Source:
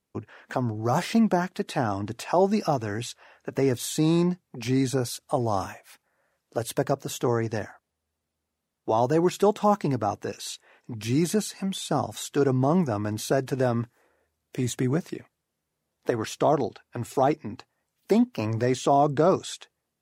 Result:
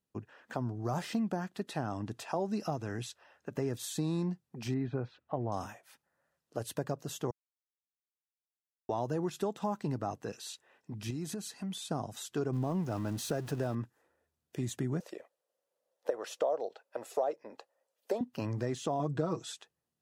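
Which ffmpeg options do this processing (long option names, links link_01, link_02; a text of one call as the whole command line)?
ffmpeg -i in.wav -filter_complex "[0:a]asettb=1/sr,asplit=3[link_01][link_02][link_03];[link_01]atrim=end=4.744[link_04];[link_02]atrim=start=4.74:end=5.52,asetpts=PTS-STARTPTS,afade=type=in:duration=0.004:curve=qsin,afade=type=out:start_time=0.776:duration=0.004:curve=qsin,lowpass=frequency=2600:width=0.5412,lowpass=frequency=2600:width=1.3066[link_05];[link_03]atrim=start=5.516[link_06];[link_04][link_05]acrossfade=duration=0.004:curve1=hsin:curve2=qsin[link_07];[link_07][link_06]acrossfade=duration=0.004:curve1=qsin:curve2=hsin,asettb=1/sr,asplit=3[link_08][link_09][link_10];[link_08]atrim=end=11.104[link_11];[link_09]atrim=start=11.1:end=11.82,asetpts=PTS-STARTPTS,afade=type=in:duration=0.004:curve=qsin,afade=type=out:start_time=0.716:duration=0.004:curve=qsin,acompressor=threshold=-28dB:ratio=6:attack=3.2:release=140:knee=1:detection=peak[link_12];[link_10]atrim=start=11.816[link_13];[link_11][link_12]acrossfade=duration=0.004:curve1=hsin:curve2=qsin[link_14];[link_14][link_13]acrossfade=duration=0.004:curve1=qsin:curve2=hsin,asettb=1/sr,asplit=3[link_15][link_16][link_17];[link_15]atrim=end=12.534[link_18];[link_16]atrim=start=12.53:end=13.75,asetpts=PTS-STARTPTS,afade=type=in:duration=0.004:curve=qsin,afade=type=out:start_time=1.216:duration=0.004:curve=qsin,aeval=exprs='val(0)+0.5*0.0188*sgn(val(0))':channel_layout=same[link_19];[link_17]atrim=start=13.746[link_20];[link_18][link_19]acrossfade=duration=0.004:curve1=hsin:curve2=qsin[link_21];[link_21][link_20]acrossfade=duration=0.004:curve1=qsin:curve2=hsin,asettb=1/sr,asplit=3[link_22][link_23][link_24];[link_22]atrim=end=15.004[link_25];[link_23]atrim=start=15:end=18.21,asetpts=PTS-STARTPTS,afade=type=in:duration=0.004:curve=qsin,afade=type=out:start_time=3.206:duration=0.004:curve=qsin,highpass=frequency=540:width_type=q:width=5.8[link_26];[link_24]atrim=start=18.206[link_27];[link_25][link_26]acrossfade=duration=0.004:curve1=hsin:curve2=qsin[link_28];[link_28][link_27]acrossfade=duration=0.004:curve1=qsin:curve2=hsin,asettb=1/sr,asplit=3[link_29][link_30][link_31];[link_29]atrim=end=18.994[link_32];[link_30]atrim=start=18.99:end=19.52,asetpts=PTS-STARTPTS,afade=type=in:duration=0.004:curve=qsin,afade=type=out:start_time=0.526:duration=0.004:curve=qsin,aecho=1:1:6.2:0.95,atrim=end_sample=23373[link_33];[link_31]atrim=start=19.516[link_34];[link_32][link_33]acrossfade=duration=0.004:curve1=hsin:curve2=qsin[link_35];[link_35][link_34]acrossfade=duration=0.004:curve1=qsin:curve2=hsin,asplit=3[link_36][link_37][link_38];[link_36]atrim=end=7.31,asetpts=PTS-STARTPTS,afade=type=out:start_time=7.306:duration=0.004:curve=hsin[link_39];[link_37]atrim=start=7.31:end=8.89,asetpts=PTS-STARTPTS,volume=0[link_40];[link_38]atrim=start=8.89,asetpts=PTS-STARTPTS,afade=type=in:duration=0.004:curve=hsin[link_41];[link_39][link_40][link_41]concat=n=3:v=0:a=1,equalizer=frequency=160:width=1.2:gain=4,bandreject=frequency=2200:width=11,acompressor=threshold=-21dB:ratio=4,volume=-8.5dB" out.wav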